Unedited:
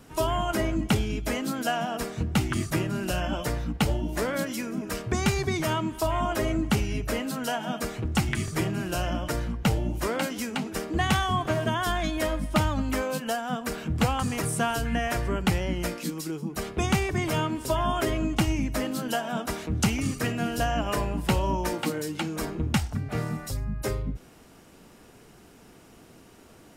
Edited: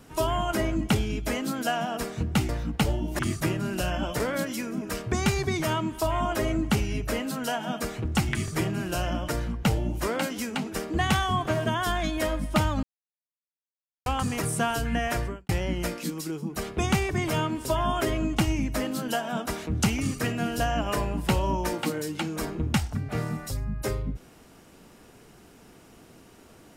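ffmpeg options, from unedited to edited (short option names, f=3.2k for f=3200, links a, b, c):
-filter_complex "[0:a]asplit=7[a][b][c][d][e][f][g];[a]atrim=end=2.492[h];[b]atrim=start=3.498:end=4.202[i];[c]atrim=start=2.488:end=3.502[j];[d]atrim=start=4.198:end=12.83,asetpts=PTS-STARTPTS,afade=t=out:st=8.628:d=0.004:c=hsin[k];[e]atrim=start=12.83:end=14.06,asetpts=PTS-STARTPTS,volume=0[l];[f]atrim=start=14.06:end=15.49,asetpts=PTS-STARTPTS,afade=t=in:d=0.004:c=hsin,afade=t=out:st=1.17:d=0.26:c=qua[m];[g]atrim=start=15.49,asetpts=PTS-STARTPTS,afade=t=in:d=0.004:c=hsin[n];[h][i]acrossfade=d=0.004:c1=hsin:c2=hsin[o];[o][j]acrossfade=d=0.004:c1=hsin:c2=hsin[p];[k][l][m][n]concat=n=4:v=0:a=1[q];[p][q]acrossfade=d=0.004:c1=hsin:c2=hsin"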